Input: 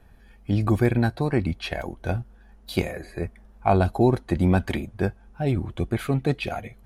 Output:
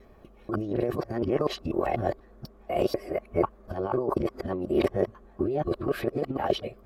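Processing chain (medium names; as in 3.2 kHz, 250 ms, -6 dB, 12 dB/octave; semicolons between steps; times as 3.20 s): time reversed locally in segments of 245 ms; peak limiter -14 dBFS, peak gain reduction 6 dB; compressor with a negative ratio -26 dBFS, ratio -0.5; formant shift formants +3 st; small resonant body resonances 390/570/1100 Hz, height 15 dB, ringing for 20 ms; trim -8 dB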